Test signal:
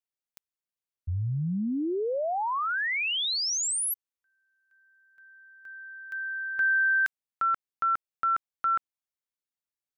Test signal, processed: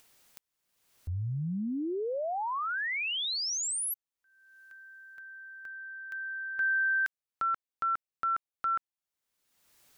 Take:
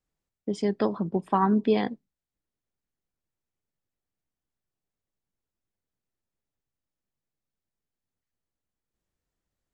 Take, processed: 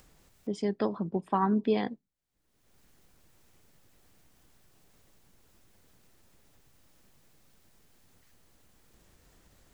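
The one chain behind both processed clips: upward compressor, threshold -34 dBFS; trim -4 dB

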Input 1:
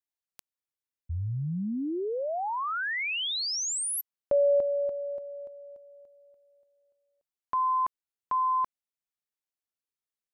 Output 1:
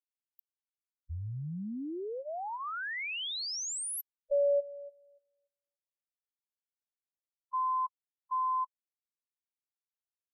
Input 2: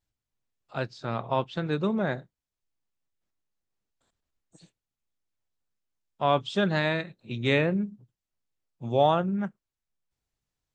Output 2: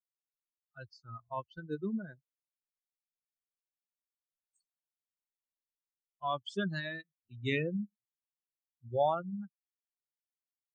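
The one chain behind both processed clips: expander on every frequency bin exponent 3; trim -4 dB

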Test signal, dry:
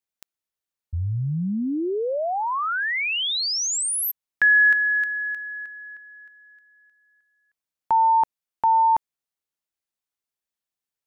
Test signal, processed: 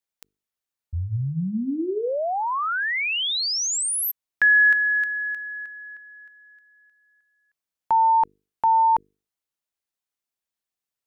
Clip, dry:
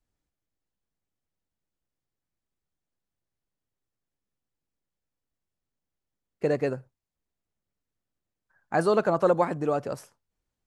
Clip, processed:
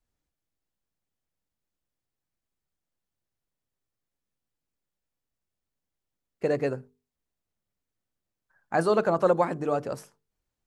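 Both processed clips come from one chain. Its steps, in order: hum notches 50/100/150/200/250/300/350/400/450 Hz

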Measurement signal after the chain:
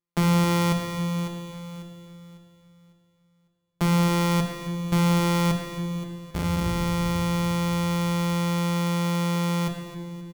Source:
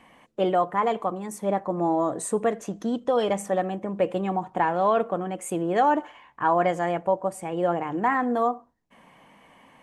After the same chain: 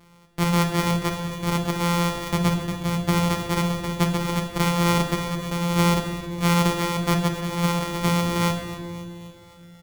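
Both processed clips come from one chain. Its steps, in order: sorted samples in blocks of 256 samples; feedback delay 265 ms, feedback 58%, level -15 dB; simulated room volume 1400 m³, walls mixed, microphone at 1.3 m

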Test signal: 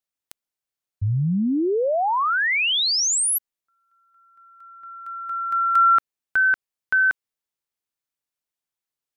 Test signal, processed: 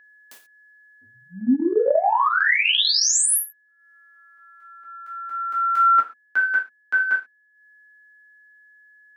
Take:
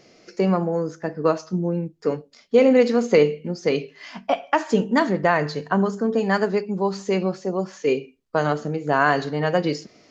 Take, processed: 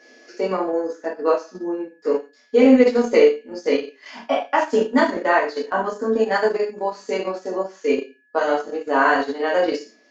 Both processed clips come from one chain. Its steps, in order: elliptic high-pass 240 Hz, stop band 40 dB; gated-style reverb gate 160 ms falling, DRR -7 dB; whistle 1.7 kHz -46 dBFS; transient shaper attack -1 dB, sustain -8 dB; trim -4.5 dB

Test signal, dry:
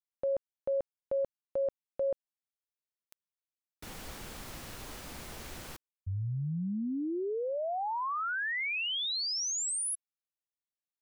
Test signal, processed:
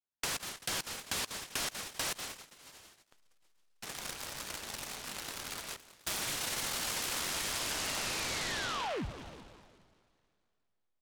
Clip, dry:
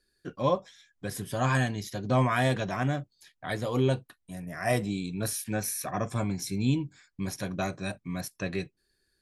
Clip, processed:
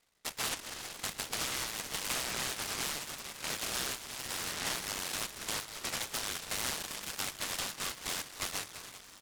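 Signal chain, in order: on a send: feedback delay 193 ms, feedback 50%, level -18 dB; on the sum: plate-style reverb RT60 2.6 s, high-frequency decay 0.85×, DRR 13.5 dB; frequency inversion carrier 3.7 kHz; in parallel at -11 dB: hysteresis with a dead band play -46.5 dBFS; on the sum: compression 6:1, threshold -34 dBFS; delay time shaken by noise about 1.9 kHz, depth 0.11 ms

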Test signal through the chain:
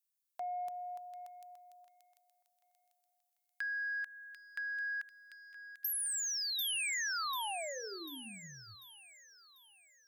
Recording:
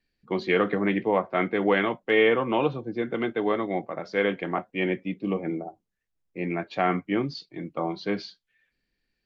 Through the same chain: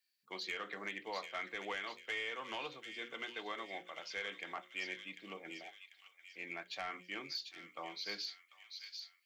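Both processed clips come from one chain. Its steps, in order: differentiator; hum notches 60/120/180/240/300/360/420/480/540 Hz; compression 8:1, threshold -39 dBFS; saturation -34 dBFS; feedback echo behind a high-pass 743 ms, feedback 44%, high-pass 2.8 kHz, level -4 dB; trim +4 dB

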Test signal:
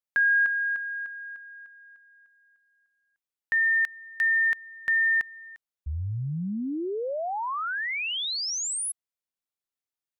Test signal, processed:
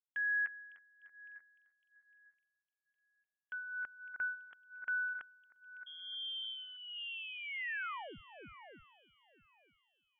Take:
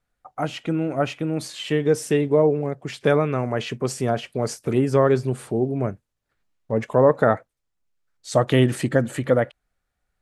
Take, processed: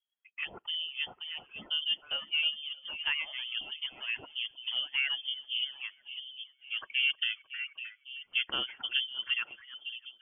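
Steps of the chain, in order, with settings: two-band feedback delay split 940 Hz, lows 556 ms, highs 311 ms, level -10 dB; harmonic tremolo 1.1 Hz, depth 70%, crossover 500 Hz; frequency inversion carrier 3.3 kHz; reverb removal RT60 1.1 s; bass shelf 180 Hz -7 dB; tape noise reduction on one side only decoder only; trim -9 dB

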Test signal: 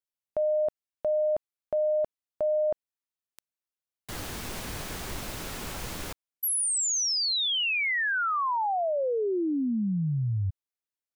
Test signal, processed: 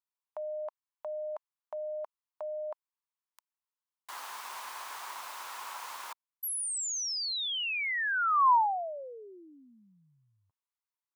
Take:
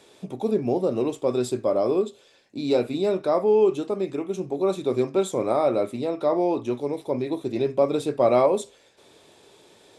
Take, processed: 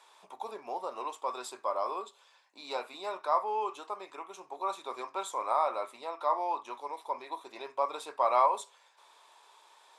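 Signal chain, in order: resonant high-pass 990 Hz, resonance Q 4.6; trim -7 dB

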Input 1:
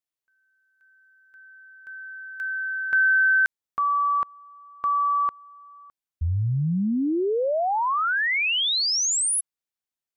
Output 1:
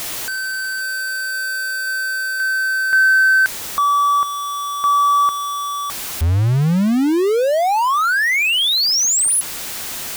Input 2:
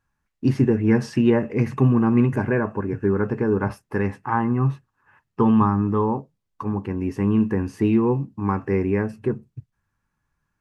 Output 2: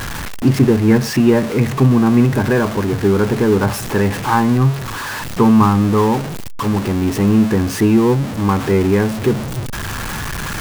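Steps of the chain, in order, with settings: jump at every zero crossing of -24 dBFS; in parallel at -3 dB: gain riding within 4 dB 2 s

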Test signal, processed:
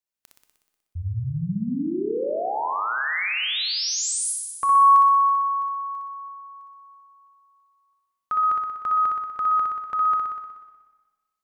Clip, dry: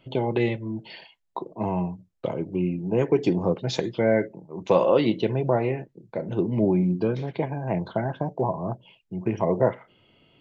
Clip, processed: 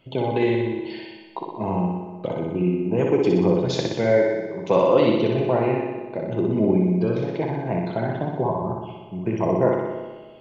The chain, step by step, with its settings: flutter echo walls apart 10.5 m, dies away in 1.1 s; Schroeder reverb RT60 1.4 s, combs from 25 ms, DRR 10 dB

